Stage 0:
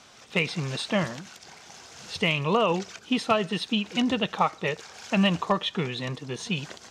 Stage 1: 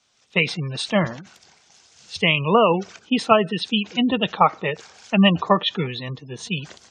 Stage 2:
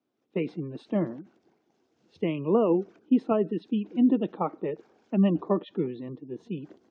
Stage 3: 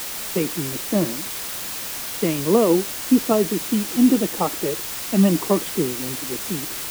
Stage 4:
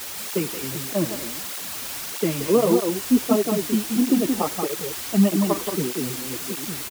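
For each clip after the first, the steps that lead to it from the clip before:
spectral gate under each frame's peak -25 dB strong; three-band expander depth 70%; gain +5 dB
band-pass 310 Hz, Q 3.6; gain +5 dB
requantised 6-bit, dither triangular; gain +6 dB
echo 0.178 s -5 dB; tape flanging out of phase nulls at 1.6 Hz, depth 7 ms

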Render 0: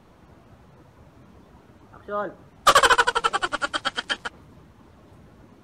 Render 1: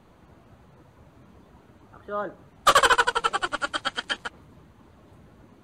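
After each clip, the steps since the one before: notch 5400 Hz, Q 8.4; gain -2 dB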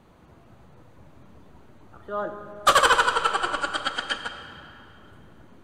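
reverb RT60 2.8 s, pre-delay 5 ms, DRR 7.5 dB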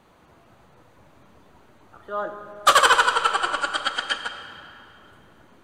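low shelf 360 Hz -9.5 dB; gain +3 dB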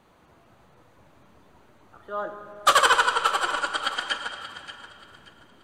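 thinning echo 0.58 s, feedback 28%, level -12.5 dB; gain -2.5 dB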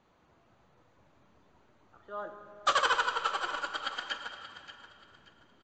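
downsampling 16000 Hz; gain -8.5 dB

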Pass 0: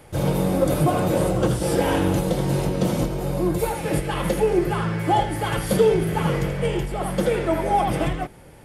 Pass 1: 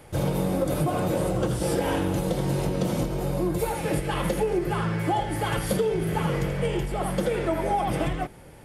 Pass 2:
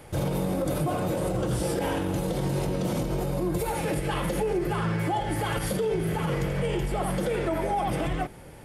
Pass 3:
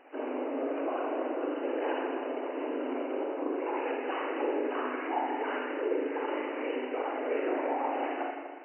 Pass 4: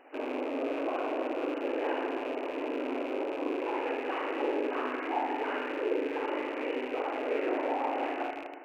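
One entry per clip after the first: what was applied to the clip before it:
compressor, threshold -20 dBFS, peak gain reduction 8 dB; gain -1 dB
limiter -20.5 dBFS, peak gain reduction 8 dB; gain +1.5 dB
whisperiser; spring tank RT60 1.4 s, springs 39/59 ms, chirp 40 ms, DRR -0.5 dB; FFT band-pass 250–3000 Hz; gain -6 dB
rattling part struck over -50 dBFS, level -34 dBFS

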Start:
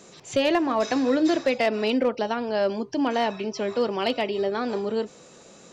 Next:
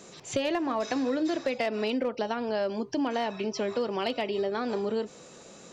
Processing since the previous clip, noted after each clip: compressor 4:1, threshold -26 dBFS, peak gain reduction 8 dB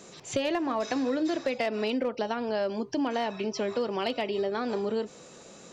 nothing audible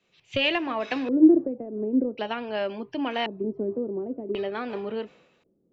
LFO low-pass square 0.46 Hz 340–2700 Hz; three-band expander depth 100%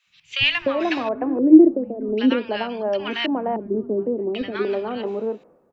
three bands offset in time highs, lows, mids 60/300 ms, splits 170/1100 Hz; gain +6.5 dB

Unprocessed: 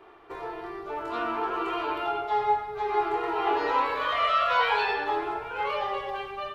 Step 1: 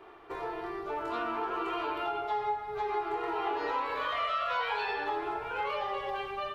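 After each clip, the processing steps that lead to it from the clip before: compressor 3:1, threshold -31 dBFS, peak gain reduction 9 dB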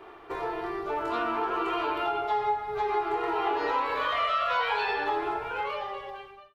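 ending faded out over 1.29 s; gain +4.5 dB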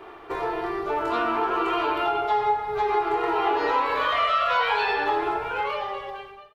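frequency-shifting echo 0.1 s, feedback 33%, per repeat +31 Hz, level -19 dB; gain +4.5 dB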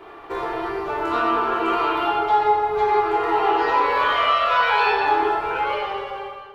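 plate-style reverb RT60 1.7 s, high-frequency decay 0.6×, DRR -0.5 dB

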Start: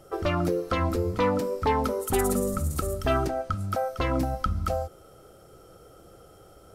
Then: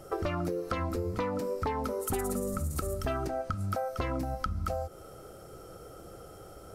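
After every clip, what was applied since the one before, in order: bell 3300 Hz -3.5 dB 0.47 oct; compressor 6:1, threshold -33 dBFS, peak gain reduction 13.5 dB; gain +3.5 dB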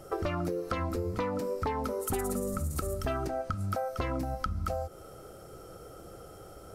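nothing audible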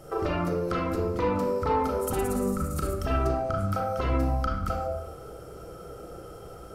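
crackle 110/s -59 dBFS; reverb RT60 0.85 s, pre-delay 30 ms, DRR -3 dB

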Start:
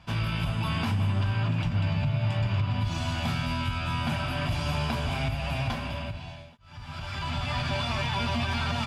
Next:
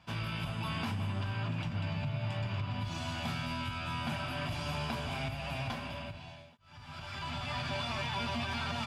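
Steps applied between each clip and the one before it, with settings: HPF 130 Hz 6 dB/oct; gain -5.5 dB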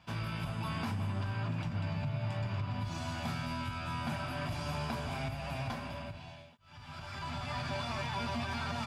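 dynamic EQ 3000 Hz, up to -6 dB, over -55 dBFS, Q 1.9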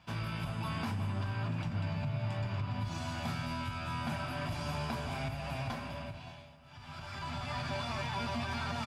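feedback echo 0.569 s, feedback 47%, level -20 dB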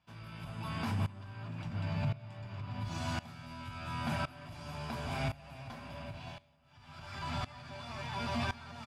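dB-ramp tremolo swelling 0.94 Hz, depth 19 dB; gain +4 dB

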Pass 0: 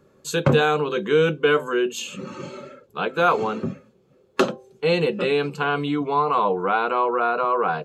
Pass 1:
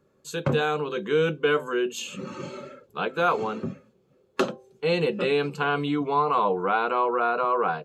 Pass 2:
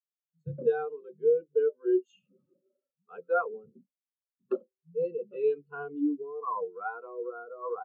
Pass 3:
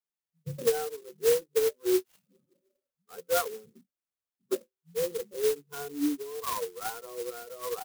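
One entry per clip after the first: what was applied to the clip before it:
AGC gain up to 7.5 dB; gain -8.5 dB
bands offset in time lows, highs 0.12 s, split 170 Hz; rotary speaker horn 0.85 Hz; spectral expander 2.5:1; gain -4.5 dB
clock jitter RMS 0.1 ms

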